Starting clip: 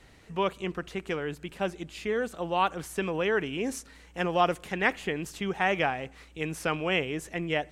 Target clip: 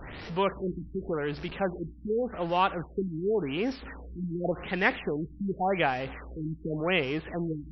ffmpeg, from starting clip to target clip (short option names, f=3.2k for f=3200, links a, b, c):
-af "aeval=exprs='val(0)+0.5*0.015*sgn(val(0))':c=same,afftfilt=real='re*lt(b*sr/1024,320*pow(5900/320,0.5+0.5*sin(2*PI*0.88*pts/sr)))':imag='im*lt(b*sr/1024,320*pow(5900/320,0.5+0.5*sin(2*PI*0.88*pts/sr)))':win_size=1024:overlap=0.75"